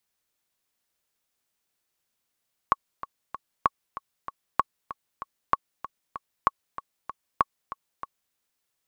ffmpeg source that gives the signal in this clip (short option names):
-f lavfi -i "aevalsrc='pow(10,(-6-15*gte(mod(t,3*60/192),60/192))/20)*sin(2*PI*1110*mod(t,60/192))*exp(-6.91*mod(t,60/192)/0.03)':d=5.62:s=44100"